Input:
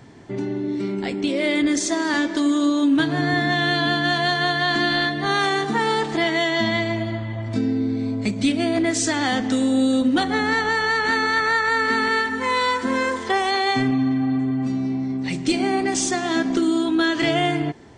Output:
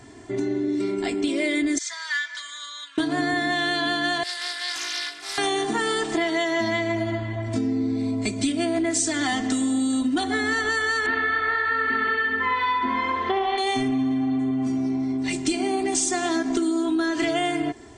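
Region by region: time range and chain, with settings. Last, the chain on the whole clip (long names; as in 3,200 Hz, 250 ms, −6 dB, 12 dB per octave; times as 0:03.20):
0:01.78–0:02.98: high-pass filter 1,400 Hz 24 dB per octave + high-frequency loss of the air 130 metres + notch filter 2,700 Hz, Q 14
0:04.23–0:05.38: first difference + highs frequency-modulated by the lows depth 0.41 ms
0:11.06–0:13.58: low-pass filter 3,200 Hz 24 dB per octave + repeating echo 67 ms, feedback 59%, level −5 dB
whole clip: parametric band 8,400 Hz +10 dB 0.79 octaves; comb filter 2.9 ms, depth 75%; downward compressor, threshold −19 dBFS; level −1.5 dB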